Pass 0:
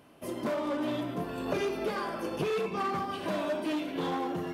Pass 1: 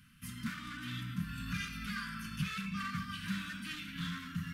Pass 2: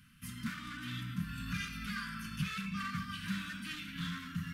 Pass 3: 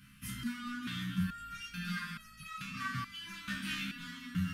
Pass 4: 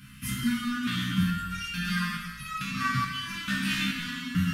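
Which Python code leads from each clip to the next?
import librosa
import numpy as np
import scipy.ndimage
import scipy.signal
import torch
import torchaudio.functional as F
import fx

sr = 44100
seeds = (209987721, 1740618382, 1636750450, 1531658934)

y1 = scipy.signal.sosfilt(scipy.signal.ellip(3, 1.0, 40, [210.0, 1400.0], 'bandstop', fs=sr, output='sos'), x)
y1 = fx.low_shelf(y1, sr, hz=75.0, db=12.0)
y2 = y1
y3 = y2 + 10.0 ** (-13.0 / 20.0) * np.pad(y2, (int(195 * sr / 1000.0), 0))[:len(y2)]
y3 = fx.resonator_held(y3, sr, hz=2.3, low_hz=67.0, high_hz=640.0)
y3 = y3 * 10.0 ** (12.0 / 20.0)
y4 = fx.rev_gated(y3, sr, seeds[0], gate_ms=440, shape='falling', drr_db=2.0)
y4 = y4 * 10.0 ** (8.0 / 20.0)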